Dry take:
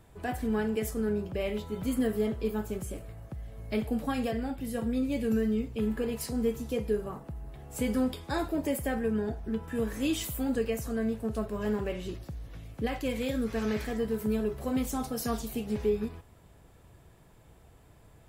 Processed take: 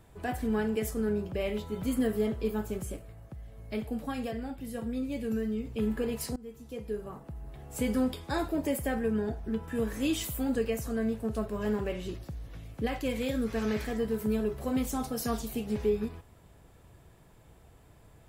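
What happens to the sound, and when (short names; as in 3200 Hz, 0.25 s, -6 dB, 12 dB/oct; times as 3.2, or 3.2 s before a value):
2.96–5.65 gain -4 dB
6.36–7.59 fade in, from -22.5 dB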